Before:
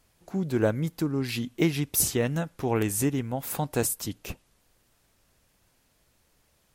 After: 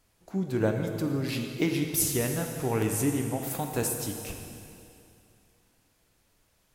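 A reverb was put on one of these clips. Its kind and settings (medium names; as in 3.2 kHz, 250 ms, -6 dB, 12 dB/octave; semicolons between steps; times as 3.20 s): plate-style reverb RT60 2.6 s, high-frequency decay 0.95×, DRR 3 dB; trim -3 dB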